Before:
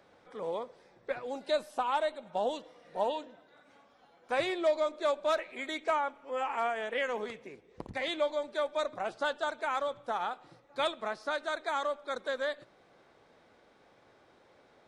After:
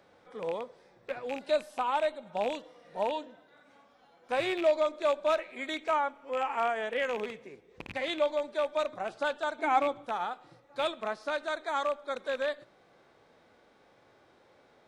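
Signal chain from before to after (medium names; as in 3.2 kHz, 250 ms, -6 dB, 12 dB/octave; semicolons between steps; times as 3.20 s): rattle on loud lows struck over -47 dBFS, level -27 dBFS; harmonic-percussive split percussive -6 dB; 9.58–10.05 s: small resonant body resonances 310/740/2200 Hz, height 15 dB; trim +2.5 dB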